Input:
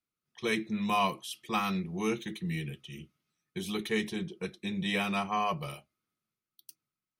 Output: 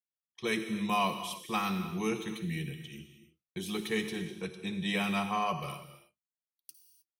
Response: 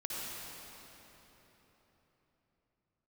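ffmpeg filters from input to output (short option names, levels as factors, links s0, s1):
-filter_complex "[0:a]agate=range=0.0631:threshold=0.00178:ratio=16:detection=peak,asplit=2[s0][s1];[1:a]atrim=start_sample=2205,afade=t=out:st=0.37:d=0.01,atrim=end_sample=16758,highshelf=f=6000:g=9.5[s2];[s1][s2]afir=irnorm=-1:irlink=0,volume=0.422[s3];[s0][s3]amix=inputs=2:normalize=0,volume=0.668"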